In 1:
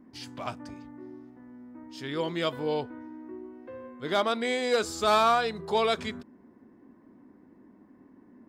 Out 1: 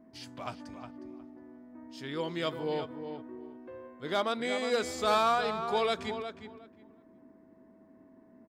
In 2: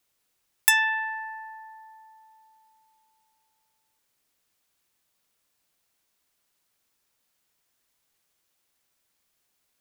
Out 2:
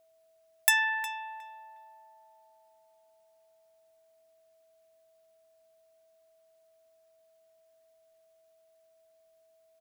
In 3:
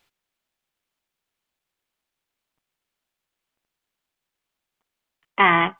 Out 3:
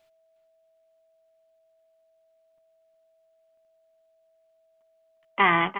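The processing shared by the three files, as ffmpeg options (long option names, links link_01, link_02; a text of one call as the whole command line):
ffmpeg -i in.wav -filter_complex "[0:a]asplit=2[link_01][link_02];[link_02]adelay=361,lowpass=frequency=2600:poles=1,volume=-8.5dB,asplit=2[link_03][link_04];[link_04]adelay=361,lowpass=frequency=2600:poles=1,volume=0.19,asplit=2[link_05][link_06];[link_06]adelay=361,lowpass=frequency=2600:poles=1,volume=0.19[link_07];[link_01][link_03][link_05][link_07]amix=inputs=4:normalize=0,aeval=exprs='val(0)+0.00112*sin(2*PI*650*n/s)':channel_layout=same,volume=-4dB" out.wav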